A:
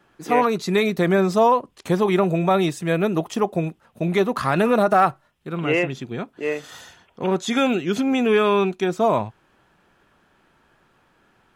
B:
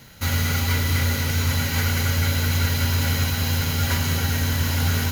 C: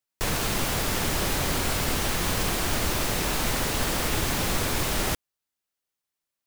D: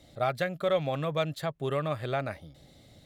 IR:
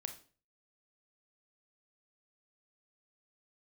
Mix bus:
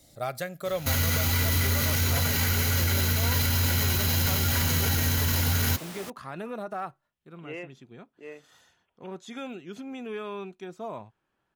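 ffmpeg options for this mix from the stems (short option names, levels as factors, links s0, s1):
-filter_complex "[0:a]adelay=1800,volume=0.126[s0];[1:a]highshelf=f=7700:g=7.5,adelay=650,volume=1.06[s1];[2:a]highpass=170,adelay=950,volume=0.2[s2];[3:a]aexciter=amount=3.6:drive=6.3:freq=4900,volume=0.562,asplit=2[s3][s4];[s4]volume=0.237[s5];[4:a]atrim=start_sample=2205[s6];[s5][s6]afir=irnorm=-1:irlink=0[s7];[s0][s1][s2][s3][s7]amix=inputs=5:normalize=0,alimiter=limit=0.158:level=0:latency=1:release=14"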